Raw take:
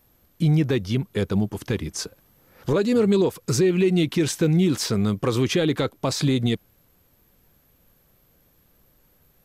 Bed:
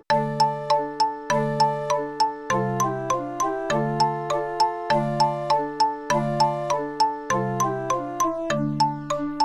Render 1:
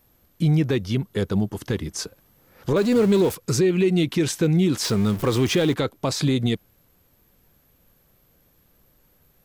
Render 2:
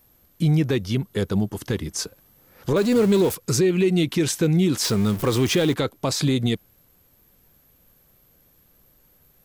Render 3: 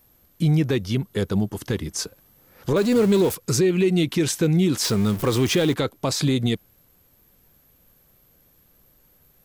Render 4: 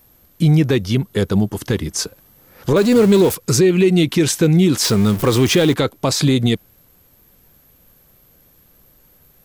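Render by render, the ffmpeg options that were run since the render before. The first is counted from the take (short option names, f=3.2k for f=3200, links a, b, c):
-filter_complex "[0:a]asettb=1/sr,asplit=3[a][b][c];[a]atrim=end=0.964[d];[b]atrim=start=0.96:end=1.94,asetpts=PTS-STARTPTS,afade=t=in:d=0.004:c=qsin,afade=t=out:st=0.976:d=0.004:c=qsin,bandreject=f=2.4k:w=11[e];[c]atrim=start=1.936[f];[d][e]acrossfade=d=0.004:c1=hsin:c2=qsin[g];[g][f]acrossfade=d=0.004:c1=qsin:c2=hsin,asettb=1/sr,asplit=3[h][i][j];[h]atrim=end=2.764[k];[i]atrim=start=2.76:end=3.35,asetpts=PTS-STARTPTS,afade=t=in:d=0.004:c=qsin,afade=t=out:st=0.586:d=0.004:c=qsin,aeval=exprs='val(0)+0.5*0.0355*sgn(val(0))':c=same[l];[j]atrim=start=3.346[m];[k][l]acrossfade=d=0.004:c1=hsin:c2=qsin[n];[n][m]acrossfade=d=0.004:c1=qsin:c2=hsin,asettb=1/sr,asplit=3[o][p][q];[o]atrim=end=4.844[r];[p]atrim=start=4.84:end=5.74,asetpts=PTS-STARTPTS,afade=t=in:d=0.004:c=qsin,afade=t=out:st=0.896:d=0.004:c=qsin,aeval=exprs='val(0)+0.5*0.0316*sgn(val(0))':c=same[s];[q]atrim=start=5.736[t];[r][s]acrossfade=d=0.004:c1=hsin:c2=qsin[u];[u][t]acrossfade=d=0.004:c1=qsin:c2=hsin"
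-af "highshelf=f=6.3k:g=5"
-af anull
-af "volume=6dB"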